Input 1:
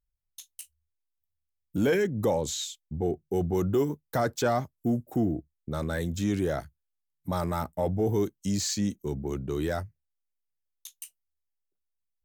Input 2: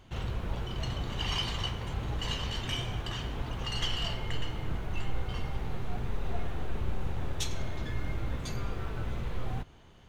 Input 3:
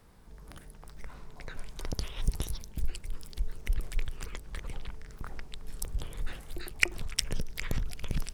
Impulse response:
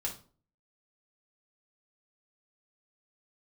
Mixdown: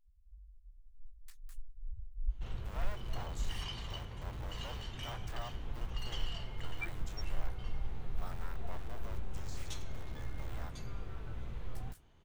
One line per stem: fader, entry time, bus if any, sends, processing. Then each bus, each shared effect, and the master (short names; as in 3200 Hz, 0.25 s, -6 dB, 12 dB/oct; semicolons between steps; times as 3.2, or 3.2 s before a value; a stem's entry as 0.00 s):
-13.0 dB, 0.90 s, no send, cycle switcher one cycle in 2, inverted; HPF 940 Hz 12 dB/oct; de-esser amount 75%
-11.5 dB, 2.30 s, no send, low shelf 70 Hz +7 dB
+1.0 dB, 0.00 s, muted 3.6–5.1, no send, loudest bins only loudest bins 1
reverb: off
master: dry